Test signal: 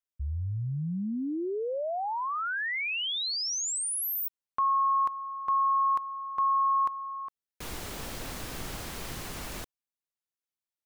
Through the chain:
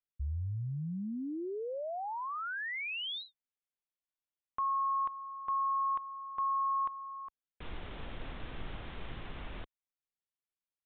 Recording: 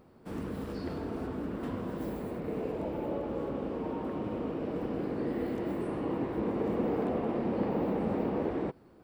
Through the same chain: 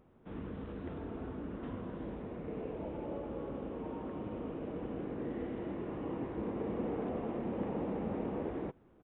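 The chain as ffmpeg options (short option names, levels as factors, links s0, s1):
-af "lowshelf=f=63:g=8.5,aresample=8000,aresample=44100,volume=0.473"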